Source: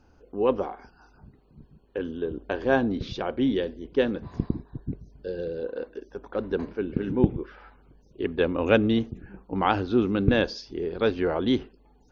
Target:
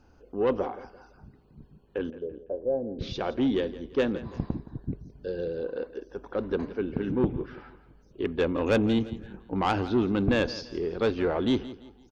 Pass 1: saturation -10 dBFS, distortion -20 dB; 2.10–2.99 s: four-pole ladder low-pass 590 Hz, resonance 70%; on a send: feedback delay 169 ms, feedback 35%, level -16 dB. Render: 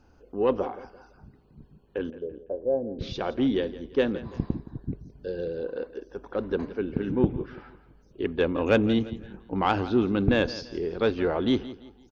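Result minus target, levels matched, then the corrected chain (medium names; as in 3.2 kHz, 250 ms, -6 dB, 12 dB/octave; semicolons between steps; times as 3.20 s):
saturation: distortion -7 dB
saturation -16.5 dBFS, distortion -13 dB; 2.10–2.99 s: four-pole ladder low-pass 590 Hz, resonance 70%; on a send: feedback delay 169 ms, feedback 35%, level -16 dB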